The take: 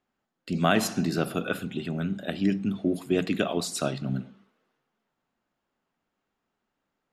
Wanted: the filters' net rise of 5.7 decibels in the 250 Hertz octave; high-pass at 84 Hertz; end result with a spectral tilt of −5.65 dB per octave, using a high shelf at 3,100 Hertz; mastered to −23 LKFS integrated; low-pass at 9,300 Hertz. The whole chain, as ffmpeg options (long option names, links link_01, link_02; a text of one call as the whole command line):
ffmpeg -i in.wav -af "highpass=84,lowpass=9300,equalizer=frequency=250:width_type=o:gain=7.5,highshelf=frequency=3100:gain=4,volume=1dB" out.wav